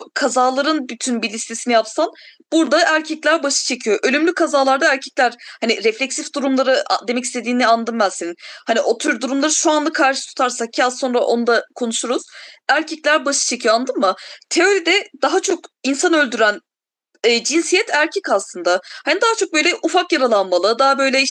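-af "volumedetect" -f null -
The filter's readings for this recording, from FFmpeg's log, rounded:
mean_volume: -17.6 dB
max_volume: -1.5 dB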